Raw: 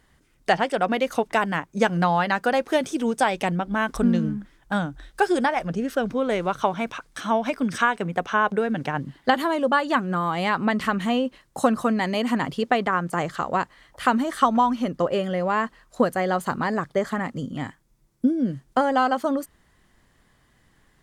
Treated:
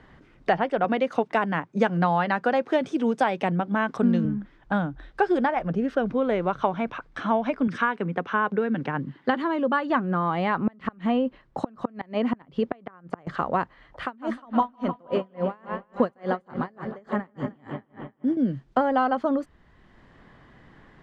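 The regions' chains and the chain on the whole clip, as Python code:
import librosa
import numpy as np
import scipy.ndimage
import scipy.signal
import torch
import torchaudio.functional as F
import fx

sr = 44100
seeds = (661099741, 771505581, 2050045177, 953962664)

y = fx.chain(x, sr, fx.highpass(hz=110.0, slope=24),
    fx.high_shelf(hz=4300.0, db=8.0), at=(0.84, 4.25))
y = fx.chain(y, sr, fx.highpass(hz=130.0, slope=12),
    fx.peak_eq(hz=690.0, db=-7.0, octaves=0.61), at=(7.67, 9.9))
y = fx.chain(y, sr, fx.gate_flip(shuts_db=-13.0, range_db=-30),
    fx.high_shelf(hz=4900.0, db=-5.5), at=(10.63, 13.27))
y = fx.chain(y, sr, fx.high_shelf(hz=6500.0, db=7.0),
    fx.echo_bbd(ms=154, stages=4096, feedback_pct=74, wet_db=-10.5),
    fx.tremolo_db(hz=3.5, depth_db=35), at=(14.02, 18.37))
y = scipy.signal.sosfilt(scipy.signal.butter(2, 4000.0, 'lowpass', fs=sr, output='sos'), y)
y = fx.high_shelf(y, sr, hz=2700.0, db=-11.5)
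y = fx.band_squash(y, sr, depth_pct=40)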